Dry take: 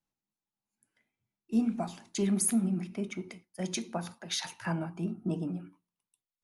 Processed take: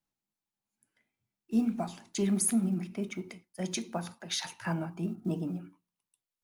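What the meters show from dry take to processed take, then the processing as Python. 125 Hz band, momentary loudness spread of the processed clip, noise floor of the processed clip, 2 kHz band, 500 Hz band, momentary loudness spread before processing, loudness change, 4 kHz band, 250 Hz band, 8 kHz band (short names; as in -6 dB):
0.0 dB, 11 LU, under -85 dBFS, 0.0 dB, 0.0 dB, 11 LU, 0.0 dB, 0.0 dB, 0.0 dB, 0.0 dB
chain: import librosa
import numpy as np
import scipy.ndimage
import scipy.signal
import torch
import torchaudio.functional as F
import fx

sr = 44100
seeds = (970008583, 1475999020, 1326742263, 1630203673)

y = fx.block_float(x, sr, bits=7)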